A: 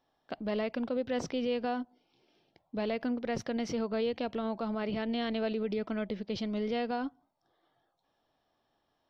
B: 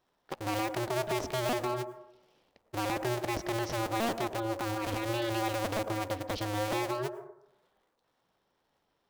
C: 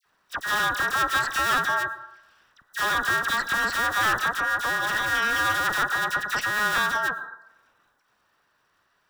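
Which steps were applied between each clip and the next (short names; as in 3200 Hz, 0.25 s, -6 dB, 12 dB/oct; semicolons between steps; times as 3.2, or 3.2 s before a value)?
cycle switcher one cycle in 2, inverted; on a send at -13.5 dB: graphic EQ 125/250/500/4000 Hz -5/+4/+8/-11 dB + reverb RT60 0.80 s, pre-delay 92 ms
band inversion scrambler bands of 2000 Hz; dispersion lows, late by 57 ms, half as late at 1700 Hz; gain +8 dB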